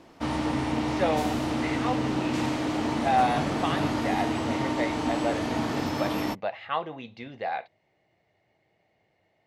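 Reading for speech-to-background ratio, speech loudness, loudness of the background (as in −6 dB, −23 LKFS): −3.0 dB, −31.5 LKFS, −28.5 LKFS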